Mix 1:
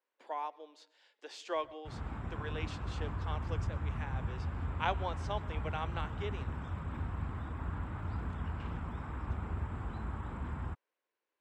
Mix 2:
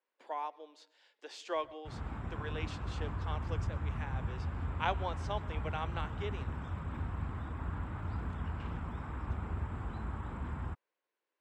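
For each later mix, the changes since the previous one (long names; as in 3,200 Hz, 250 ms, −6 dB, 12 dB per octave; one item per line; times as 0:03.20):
nothing changed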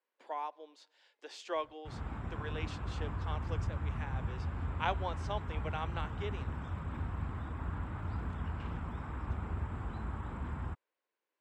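reverb: off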